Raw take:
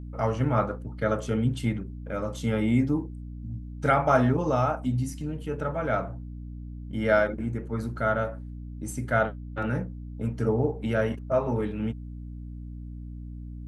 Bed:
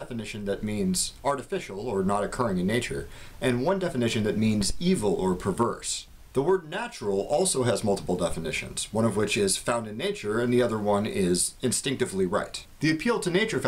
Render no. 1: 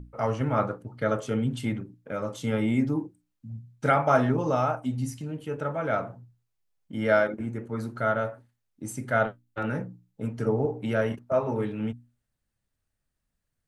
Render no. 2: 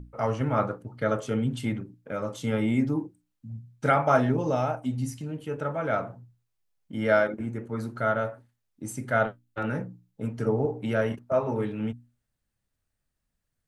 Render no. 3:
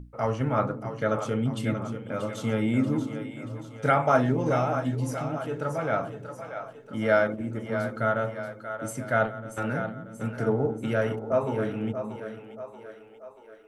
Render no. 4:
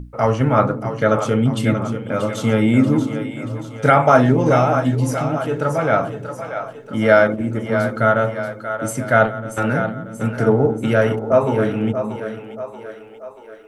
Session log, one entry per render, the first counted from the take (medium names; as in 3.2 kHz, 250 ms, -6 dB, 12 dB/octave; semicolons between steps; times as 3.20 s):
hum notches 60/120/180/240/300 Hz
4.19–4.84 s: peaking EQ 1.2 kHz -6.5 dB 0.59 oct
two-band feedback delay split 370 Hz, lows 233 ms, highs 633 ms, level -9 dB
trim +10 dB; peak limiter -1 dBFS, peak gain reduction 2 dB